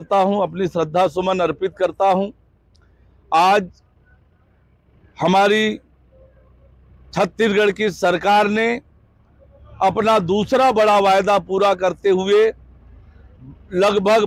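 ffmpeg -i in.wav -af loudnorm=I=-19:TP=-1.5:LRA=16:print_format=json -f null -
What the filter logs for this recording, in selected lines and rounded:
"input_i" : "-17.3",
"input_tp" : "-7.0",
"input_lra" : "4.4",
"input_thresh" : "-29.1",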